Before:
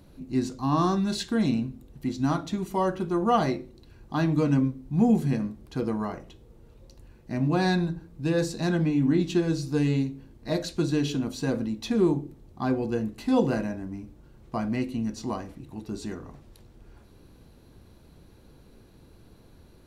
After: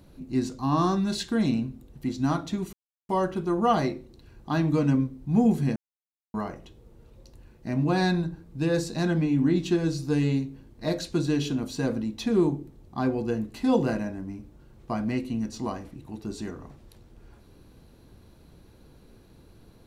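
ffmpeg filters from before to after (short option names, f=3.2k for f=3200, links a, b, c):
-filter_complex "[0:a]asplit=4[a][b][c][d];[a]atrim=end=2.73,asetpts=PTS-STARTPTS,afade=t=out:st=2.726:d=0.004:c=hsin,apad=pad_dur=0.36[e];[b]atrim=start=2.73:end=5.4,asetpts=PTS-STARTPTS,afade=t=in:d=0.004:c=hsin,afade=t=out:st=2.666:d=0.004:c=hsin[f];[c]atrim=start=5.4:end=5.98,asetpts=PTS-STARTPTS,volume=0[g];[d]atrim=start=5.98,asetpts=PTS-STARTPTS,afade=t=in:d=0.004:c=hsin[h];[e][f][g][h]concat=n=4:v=0:a=1"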